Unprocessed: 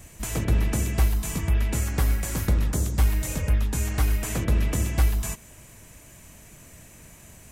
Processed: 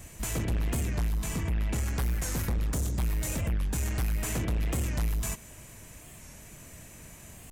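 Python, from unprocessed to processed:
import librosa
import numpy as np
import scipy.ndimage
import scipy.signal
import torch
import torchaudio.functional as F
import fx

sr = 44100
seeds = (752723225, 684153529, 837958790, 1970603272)

y = fx.high_shelf(x, sr, hz=6900.0, db=-5.5, at=(0.82, 1.88))
y = 10.0 ** (-25.0 / 20.0) * np.tanh(y / 10.0 ** (-25.0 / 20.0))
y = fx.record_warp(y, sr, rpm=45.0, depth_cents=160.0)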